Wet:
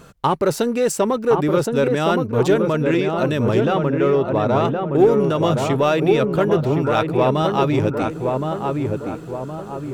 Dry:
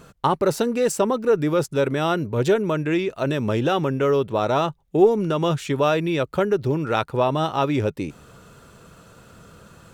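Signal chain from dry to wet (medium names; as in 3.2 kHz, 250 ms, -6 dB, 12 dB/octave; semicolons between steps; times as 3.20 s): 3.65–4.65 s: treble shelf 3.6 kHz -11.5 dB; in parallel at -9.5 dB: hard clipper -19 dBFS, distortion -10 dB; on the sum: filtered feedback delay 1068 ms, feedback 50%, low-pass 1.3 kHz, level -3 dB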